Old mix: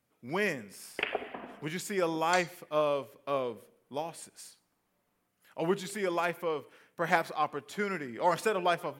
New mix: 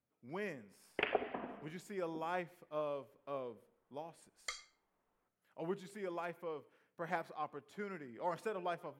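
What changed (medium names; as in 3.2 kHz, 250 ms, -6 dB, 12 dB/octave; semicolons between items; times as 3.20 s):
speech -10.5 dB; second sound: entry +2.15 s; master: add treble shelf 2 kHz -8.5 dB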